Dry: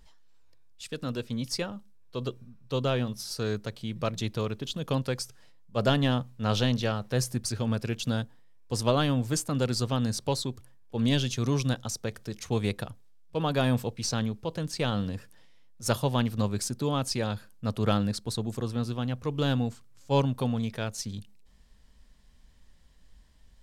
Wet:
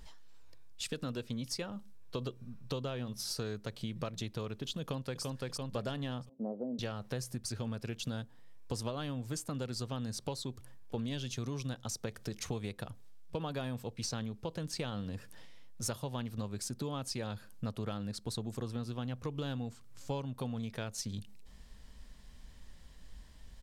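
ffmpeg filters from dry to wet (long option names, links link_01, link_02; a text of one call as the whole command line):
ffmpeg -i in.wav -filter_complex "[0:a]asplit=2[link_01][link_02];[link_02]afade=type=in:start_time=4.81:duration=0.01,afade=type=out:start_time=5.23:duration=0.01,aecho=0:1:340|680|1020|1360|1700:0.501187|0.200475|0.08019|0.032076|0.0128304[link_03];[link_01][link_03]amix=inputs=2:normalize=0,asettb=1/sr,asplit=3[link_04][link_05][link_06];[link_04]atrim=end=6.294[link_07];[link_05]atrim=start=6.29:end=6.79,asetpts=PTS-STARTPTS,afade=type=in:duration=0.004:curve=qsin,afade=type=out:start_time=0.496:duration=0.004:curve=qsin,asuperpass=centerf=370:order=8:qfactor=0.74[link_08];[link_06]atrim=start=6.786[link_09];[link_07][link_08]acrossfade=duration=0.004:curve1=hsin:curve2=qsin[link_10];[link_10][link_09]acrossfade=duration=0.004:curve1=qsin:curve2=hsin,acompressor=threshold=-40dB:ratio=12,volume=5dB" out.wav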